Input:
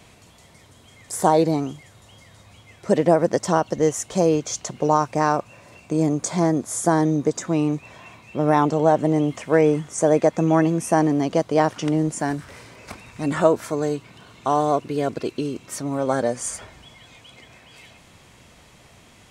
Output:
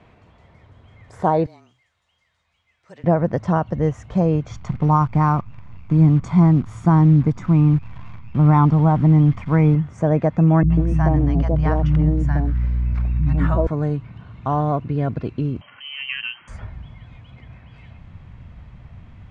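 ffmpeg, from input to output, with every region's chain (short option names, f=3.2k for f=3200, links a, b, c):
-filter_complex "[0:a]asettb=1/sr,asplit=3[a][b][c];[a]atrim=end=1.464[d];[b]atrim=start=1.46:end=3.04,asetpts=PTS-STARTPTS,afade=t=in:d=0.004:c=qsin,afade=t=out:st=1.576:d=0.004:c=qsin,aderivative,afreqshift=-22[e];[c]atrim=start=3.036[f];[d][e]acrossfade=d=0.004:c1=hsin:c2=qsin[g];[g][f]acrossfade=d=0.004:c1=qsin:c2=hsin,asettb=1/sr,asplit=3[h][i][j];[h]atrim=end=4.504[k];[i]atrim=start=4.5:end=9.75,asetpts=PTS-STARTPTS,afade=t=in:d=0.004:c=qsin,afade=t=out:st=5.246:d=0.004:c=qsin,aecho=1:1:0.9:0.58,atrim=end_sample=231525,acrusher=bits=7:dc=4:mix=0:aa=0.000001[l];[j]atrim=start=9.746[m];[k][l]acrossfade=d=0.004:c1=hsin:c2=qsin[n];[n][m]acrossfade=d=0.004:c1=qsin:c2=hsin,asettb=1/sr,asplit=3[o][p][q];[o]atrim=end=10.634[r];[p]atrim=start=10.63:end=13.67,asetpts=PTS-STARTPTS,afade=t=in:d=0.004:c=qsin,afade=t=out:st=3.036:d=0.004:c=qsin,acrossover=split=220|800[s][t][u];[u]adelay=70[v];[t]adelay=140[w];[s][w][v]amix=inputs=3:normalize=0,atrim=end_sample=134064,aeval=exprs='val(0)+0.02*(sin(2*PI*60*n/s)+sin(2*PI*2*60*n/s)/2+sin(2*PI*3*60*n/s)/3+sin(2*PI*4*60*n/s)/4+sin(2*PI*5*60*n/s)/5)':c=same[x];[q]atrim=start=13.666[y];[r][x]acrossfade=d=0.004:c1=hsin:c2=qsin[z];[z][y]acrossfade=d=0.004:c1=qsin:c2=hsin,asettb=1/sr,asplit=3[aa][ab][ac];[aa]atrim=end=15.614[ad];[ab]atrim=start=15.61:end=16.48,asetpts=PTS-STARTPTS,afade=t=in:d=0.004:c=qsin,afade=t=out:st=0.866:d=0.004:c=qsin,acompressor=mode=upward:threshold=-34dB:ratio=2.5:attack=3.2:release=140:knee=2.83:detection=peak,lowpass=f=2.8k:t=q:w=0.5098,lowpass=f=2.8k:t=q:w=0.6013,lowpass=f=2.8k:t=q:w=0.9,lowpass=f=2.8k:t=q:w=2.563,afreqshift=-3300,highpass=f=110:w=0.5412,highpass=f=110:w=1.3066[ae];[ac]atrim=start=16.476[af];[ad][ae]acrossfade=d=0.004:c1=hsin:c2=qsin[ag];[ag][af]acrossfade=d=0.004:c1=qsin:c2=hsin,asubboost=boost=9:cutoff=130,lowpass=1.9k"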